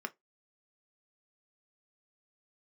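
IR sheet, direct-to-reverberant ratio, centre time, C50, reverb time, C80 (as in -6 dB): 6.5 dB, 3 ms, 26.5 dB, 0.15 s, 37.5 dB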